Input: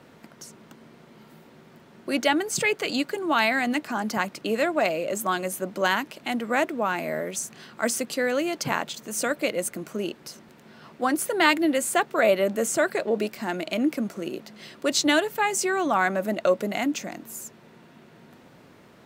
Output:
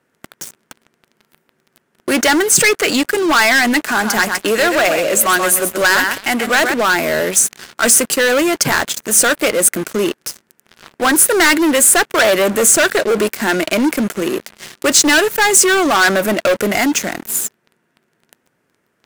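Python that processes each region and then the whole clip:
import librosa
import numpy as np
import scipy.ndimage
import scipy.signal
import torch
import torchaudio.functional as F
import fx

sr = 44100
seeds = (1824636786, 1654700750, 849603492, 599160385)

y = fx.chain(x, sr, fx.low_shelf(hz=410.0, db=-4.5),
    fx.echo_feedback(ms=129, feedback_pct=18, wet_db=-9.0), at=(3.9, 6.74))
y = fx.graphic_eq_15(y, sr, hz=(400, 1600, 4000, 10000), db=(4, 7, -7, 4))
y = fx.leveller(y, sr, passes=5)
y = fx.high_shelf(y, sr, hz=2500.0, db=8.0)
y = y * 10.0 ** (-7.0 / 20.0)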